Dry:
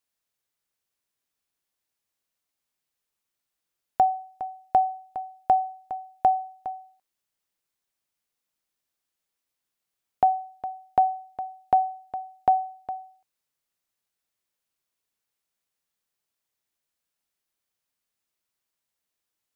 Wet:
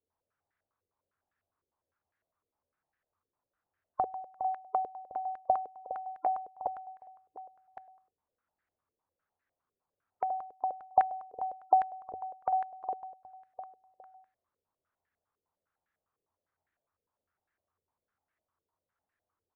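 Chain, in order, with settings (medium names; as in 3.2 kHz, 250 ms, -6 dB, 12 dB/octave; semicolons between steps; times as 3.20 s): spectral gate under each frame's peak -25 dB strong; peaking EQ 87 Hz +13.5 dB 0.34 oct; compression 3:1, threshold -38 dBFS, peak gain reduction 16.5 dB; on a send: delay 1112 ms -17 dB; on the sum: step-sequenced low-pass 9.9 Hz 450–1700 Hz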